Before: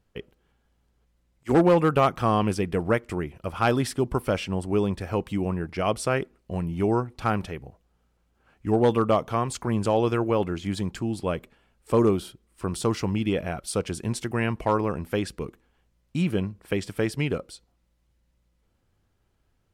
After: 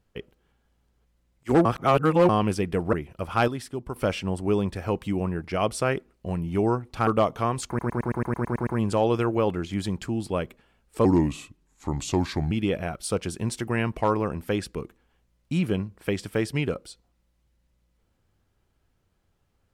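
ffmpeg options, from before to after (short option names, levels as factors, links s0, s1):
-filter_complex "[0:a]asplit=18[s0][s1][s2][s3][s4][s5][s6][s7][s8][s9][s10][s11][s12][s13][s14][s15][s16][s17];[s0]atrim=end=1.652[s18];[s1]atrim=start=1.648:end=2.292,asetpts=PTS-STARTPTS,areverse[s19];[s2]atrim=start=2.288:end=2.932[s20];[s3]atrim=start=3.178:end=3.732[s21];[s4]atrim=start=3.728:end=4.212,asetpts=PTS-STARTPTS,volume=0.398[s22];[s5]atrim=start=4.208:end=7.322[s23];[s6]atrim=start=8.988:end=9.712[s24];[s7]atrim=start=9.598:end=9.712[s25];[s8]atrim=start=9.598:end=9.712[s26];[s9]atrim=start=9.598:end=9.712[s27];[s10]atrim=start=9.598:end=9.712[s28];[s11]atrim=start=9.598:end=9.712[s29];[s12]atrim=start=9.598:end=9.712[s30];[s13]atrim=start=9.598:end=9.712[s31];[s14]atrim=start=9.598:end=9.712[s32];[s15]atrim=start=9.598:end=11.984[s33];[s16]atrim=start=11.98:end=13.15,asetpts=PTS-STARTPTS,asetrate=35280,aresample=44100,atrim=end_sample=64496,asetpts=PTS-STARTPTS[s34];[s17]atrim=start=13.146[s35];[s18][s19]acrossfade=d=0.004:c1=hsin:c2=hsin[s36];[s36][s20]acrossfade=d=0.004:c1=hsin:c2=hsin[s37];[s37][s21]acrossfade=d=0.004:c1=hsin:c2=hsin[s38];[s38][s22]acrossfade=d=0.004:c1=hsin:c2=hsin[s39];[s39][s23]acrossfade=d=0.004:c1=hsin:c2=hsin[s40];[s40][s24]acrossfade=d=0.004:c1=hsin:c2=hsin[s41];[s41][s25]acrossfade=d=0.004:c1=hsin:c2=hsin[s42];[s42][s26]acrossfade=d=0.004:c1=hsin:c2=hsin[s43];[s43][s27]acrossfade=d=0.004:c1=hsin:c2=hsin[s44];[s44][s28]acrossfade=d=0.004:c1=hsin:c2=hsin[s45];[s45][s29]acrossfade=d=0.004:c1=hsin:c2=hsin[s46];[s46][s30]acrossfade=d=0.004:c1=hsin:c2=hsin[s47];[s47][s31]acrossfade=d=0.004:c1=hsin:c2=hsin[s48];[s48][s32]acrossfade=d=0.004:c1=hsin:c2=hsin[s49];[s49][s33]acrossfade=d=0.004:c1=hsin:c2=hsin[s50];[s50][s34]acrossfade=d=0.004:c1=hsin:c2=hsin[s51];[s51][s35]acrossfade=d=0.004:c1=hsin:c2=hsin"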